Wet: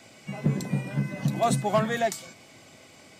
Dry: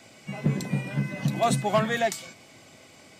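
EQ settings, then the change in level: dynamic bell 2.7 kHz, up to -4 dB, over -44 dBFS, Q 0.88; 0.0 dB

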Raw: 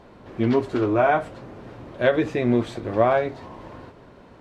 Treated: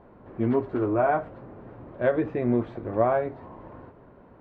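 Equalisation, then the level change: low-pass 1.5 kHz 12 dB/octave; -3.5 dB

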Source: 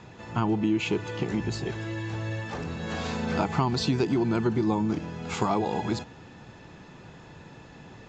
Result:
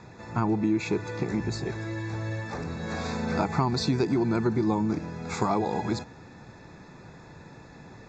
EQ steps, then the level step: Butterworth band-stop 3 kHz, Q 3; 0.0 dB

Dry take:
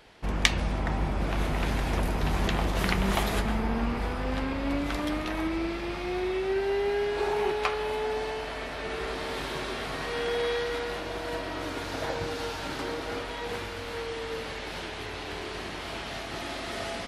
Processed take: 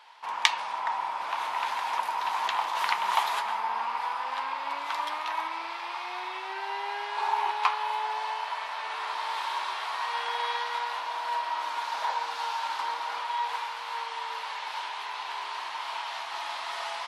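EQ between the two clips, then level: resonant high-pass 950 Hz, resonance Q 8.3; peaking EQ 3.6 kHz +6.5 dB 1.8 oct; -6.0 dB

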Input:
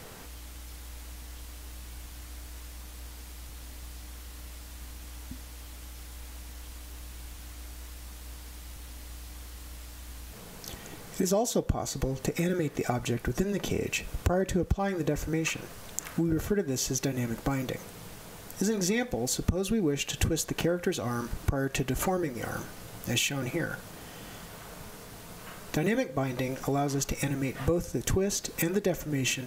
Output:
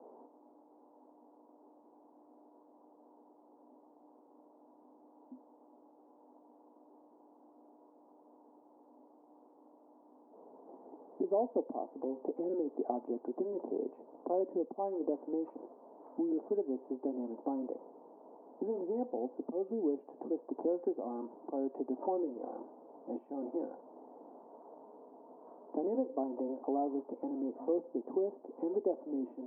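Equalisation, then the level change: Chebyshev band-pass 250–950 Hz, order 4; -3.5 dB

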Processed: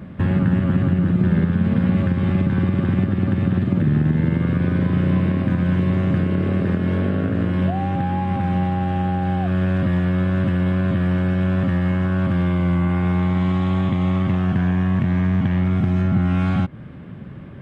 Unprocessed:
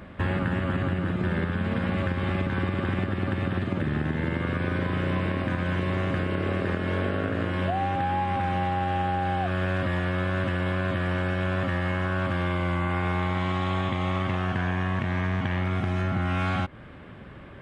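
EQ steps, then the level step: peaking EQ 160 Hz +14.5 dB 2 oct; -2.0 dB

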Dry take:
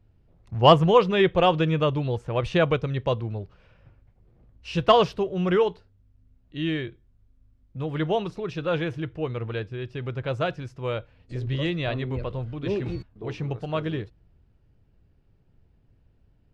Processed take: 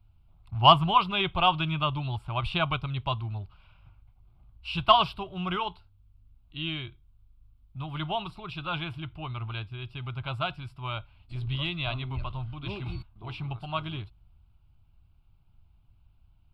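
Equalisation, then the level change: peaking EQ 240 Hz -10.5 dB 1.9 oct; static phaser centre 1.8 kHz, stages 6; +3.0 dB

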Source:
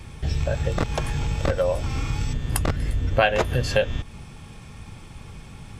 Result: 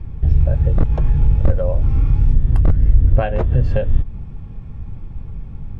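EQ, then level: low-pass 2.6 kHz 6 dB/octave; tilt EQ -4 dB/octave; -4.5 dB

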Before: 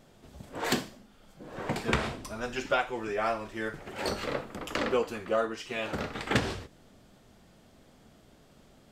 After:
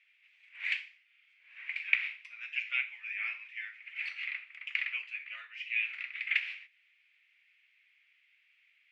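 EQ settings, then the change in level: Butterworth band-pass 2.3 kHz, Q 3.7; tilt EQ +4 dB/octave; +3.5 dB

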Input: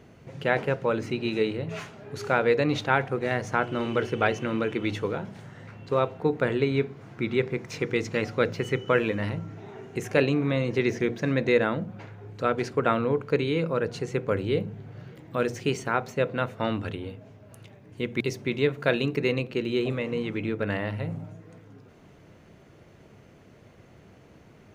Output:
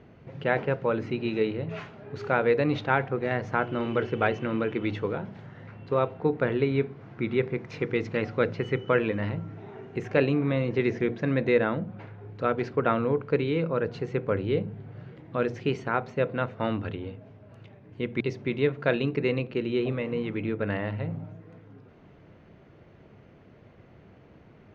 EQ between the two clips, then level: distance through air 220 m; 0.0 dB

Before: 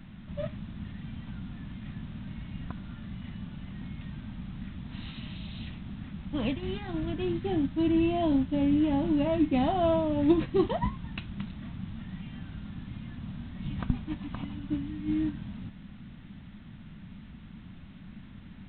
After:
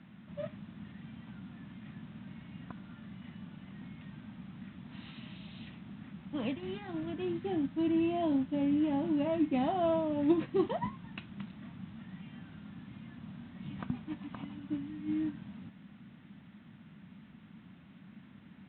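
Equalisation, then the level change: band-pass 160–3300 Hz; -4.0 dB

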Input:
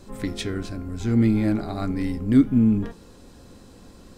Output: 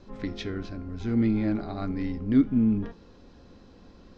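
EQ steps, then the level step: steep low-pass 6.3 kHz 36 dB/octave; distance through air 83 m; peaking EQ 120 Hz -4.5 dB 0.31 oct; -4.0 dB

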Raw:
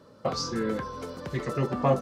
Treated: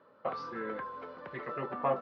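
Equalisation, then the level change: band-pass filter 1.5 kHz, Q 0.71; distance through air 360 m; 0.0 dB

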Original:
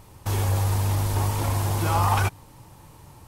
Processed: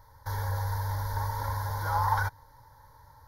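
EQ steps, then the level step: peaking EQ 1.1 kHz +10 dB 1.7 oct; static phaser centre 710 Hz, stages 6; static phaser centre 1.8 kHz, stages 8; -4.5 dB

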